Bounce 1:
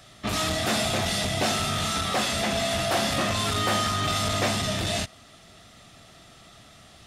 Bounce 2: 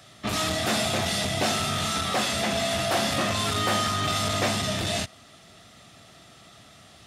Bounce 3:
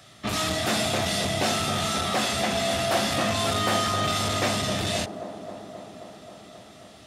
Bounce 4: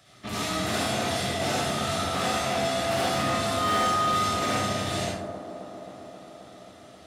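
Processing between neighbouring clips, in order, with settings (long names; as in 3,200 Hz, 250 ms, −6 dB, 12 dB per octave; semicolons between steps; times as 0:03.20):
high-pass filter 73 Hz
delay with a band-pass on its return 266 ms, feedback 76%, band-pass 450 Hz, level −7.5 dB
convolution reverb RT60 1.0 s, pre-delay 47 ms, DRR −5 dB; gain into a clipping stage and back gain 11.5 dB; level −7.5 dB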